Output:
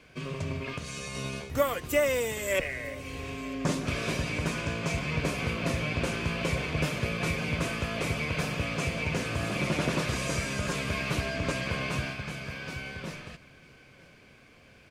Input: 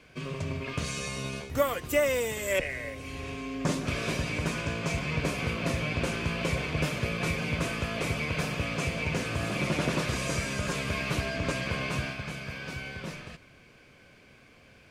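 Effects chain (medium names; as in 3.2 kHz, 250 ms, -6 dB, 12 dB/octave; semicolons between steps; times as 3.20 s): 0.73–1.15 s: compression 6:1, threshold -34 dBFS, peak gain reduction 8 dB; on a send: delay 951 ms -22.5 dB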